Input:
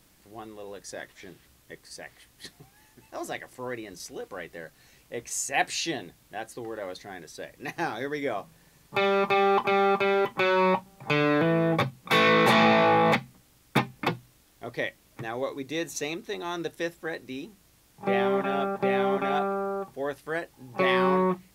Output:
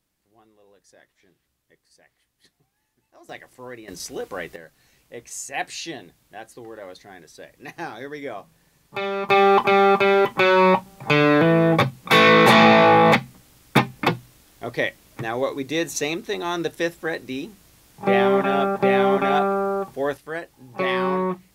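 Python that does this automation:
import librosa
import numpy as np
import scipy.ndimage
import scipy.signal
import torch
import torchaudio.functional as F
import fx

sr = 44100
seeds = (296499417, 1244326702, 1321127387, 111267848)

y = fx.gain(x, sr, db=fx.steps((0.0, -15.0), (3.29, -3.0), (3.88, 7.0), (4.56, -2.5), (9.29, 7.0), (20.17, 0.5)))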